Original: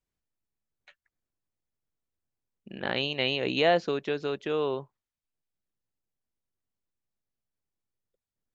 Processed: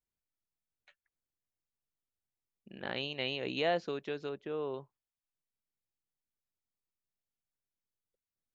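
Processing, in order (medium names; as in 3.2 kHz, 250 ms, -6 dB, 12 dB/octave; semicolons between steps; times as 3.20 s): 4.29–4.74 s: low-pass 1.4 kHz 6 dB/octave; trim -8 dB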